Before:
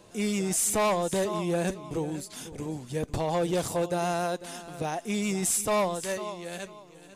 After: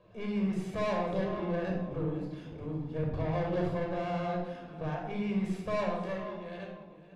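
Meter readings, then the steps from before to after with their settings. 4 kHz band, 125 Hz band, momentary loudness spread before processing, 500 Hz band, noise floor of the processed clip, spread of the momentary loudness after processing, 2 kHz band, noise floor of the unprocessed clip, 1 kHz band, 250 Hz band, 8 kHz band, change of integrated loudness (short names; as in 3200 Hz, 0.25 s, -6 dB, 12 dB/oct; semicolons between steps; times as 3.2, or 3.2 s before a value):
-11.5 dB, 0.0 dB, 12 LU, -5.0 dB, -51 dBFS, 9 LU, -6.0 dB, -51 dBFS, -6.0 dB, -2.0 dB, under -30 dB, -5.0 dB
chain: air absorption 340 m; tube stage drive 28 dB, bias 0.7; shoebox room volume 3000 m³, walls furnished, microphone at 5.6 m; gain -5.5 dB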